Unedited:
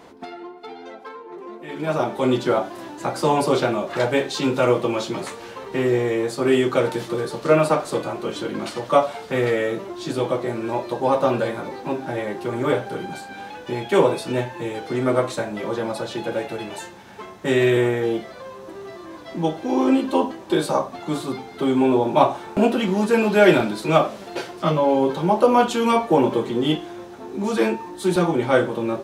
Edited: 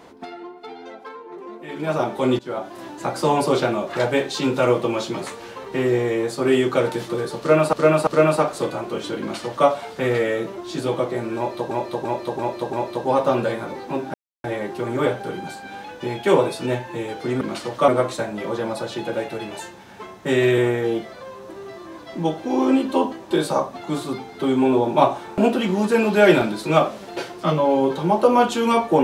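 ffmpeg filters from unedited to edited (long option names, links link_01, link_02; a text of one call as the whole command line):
ffmpeg -i in.wav -filter_complex "[0:a]asplit=11[link_01][link_02][link_03][link_04][link_05][link_06][link_07][link_08][link_09][link_10][link_11];[link_01]atrim=end=2.39,asetpts=PTS-STARTPTS,afade=type=out:start_time=2.386:duration=0.004:curve=hsin:silence=0.105925[link_12];[link_02]atrim=start=2.39:end=7.732,asetpts=PTS-STARTPTS,afade=type=in:duration=0.47:silence=0.105925[link_13];[link_03]atrim=start=7.388:end=7.732[link_14];[link_04]atrim=start=7.388:end=11.032[link_15];[link_05]atrim=start=10.688:end=11.032[link_16];[link_06]atrim=start=10.688:end=11.032[link_17];[link_07]atrim=start=10.688:end=11.032[link_18];[link_08]atrim=start=10.688:end=12.1,asetpts=PTS-STARTPTS,afade=type=out:start_time=1.408:duration=0.004:curve=hsin,apad=pad_dur=0.3[link_19];[link_09]atrim=start=12.1:end=15.072,asetpts=PTS-STARTPTS,afade=type=in:duration=0.004:curve=hsin[link_20];[link_10]atrim=start=8.518:end=8.992[link_21];[link_11]atrim=start=15.068[link_22];[link_12][link_13]concat=n=2:v=0:a=1[link_23];[link_23][link_14]acrossfade=duration=0.004:curve1=hsin:curve2=hsin[link_24];[link_24][link_15]acrossfade=duration=0.004:curve1=hsin:curve2=hsin[link_25];[link_25][link_16]acrossfade=duration=0.004:curve1=hsin:curve2=hsin[link_26];[link_26][link_17]acrossfade=duration=0.004:curve1=hsin:curve2=hsin[link_27];[link_27][link_18]acrossfade=duration=0.004:curve1=hsin:curve2=hsin[link_28];[link_19][link_20]concat=n=2:v=0:a=1[link_29];[link_28][link_29]acrossfade=duration=0.004:curve1=hsin:curve2=hsin[link_30];[link_30][link_21]acrossfade=duration=0.004:curve1=hsin:curve2=hsin[link_31];[link_31][link_22]acrossfade=duration=0.004:curve1=hsin:curve2=hsin" out.wav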